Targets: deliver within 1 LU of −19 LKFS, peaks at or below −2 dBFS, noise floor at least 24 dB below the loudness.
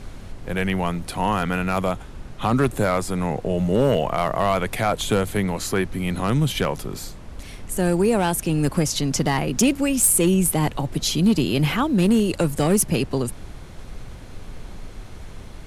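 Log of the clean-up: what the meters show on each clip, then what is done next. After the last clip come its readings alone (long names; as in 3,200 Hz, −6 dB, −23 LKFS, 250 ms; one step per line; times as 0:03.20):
share of clipped samples 0.5%; peaks flattened at −11.0 dBFS; background noise floor −39 dBFS; target noise floor −46 dBFS; integrated loudness −21.5 LKFS; sample peak −11.0 dBFS; target loudness −19.0 LKFS
→ clipped peaks rebuilt −11 dBFS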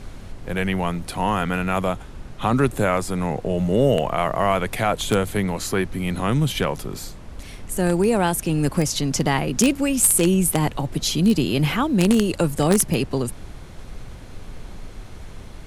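share of clipped samples 0.0%; background noise floor −39 dBFS; target noise floor −45 dBFS
→ noise reduction from a noise print 6 dB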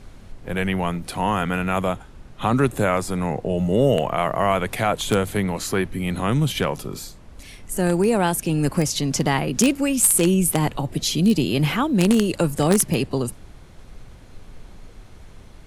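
background noise floor −44 dBFS; target noise floor −45 dBFS
→ noise reduction from a noise print 6 dB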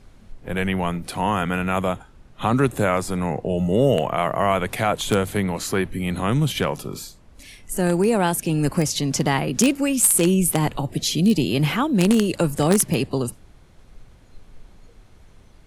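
background noise floor −50 dBFS; integrated loudness −21.0 LKFS; sample peak −2.0 dBFS; target loudness −19.0 LKFS
→ level +2 dB
brickwall limiter −2 dBFS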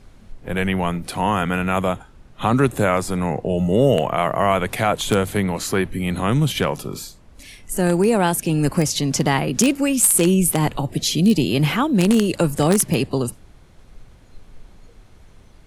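integrated loudness −19.5 LKFS; sample peak −2.0 dBFS; background noise floor −48 dBFS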